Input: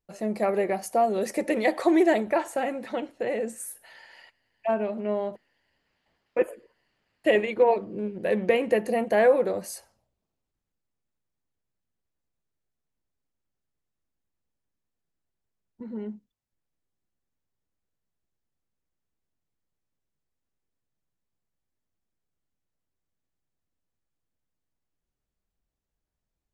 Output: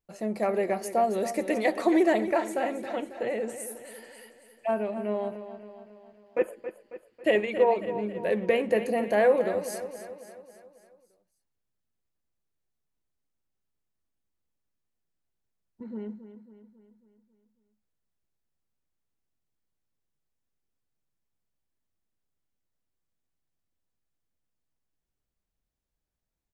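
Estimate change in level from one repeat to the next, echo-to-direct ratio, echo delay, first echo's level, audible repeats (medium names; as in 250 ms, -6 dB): -5.5 dB, -10.0 dB, 273 ms, -11.5 dB, 5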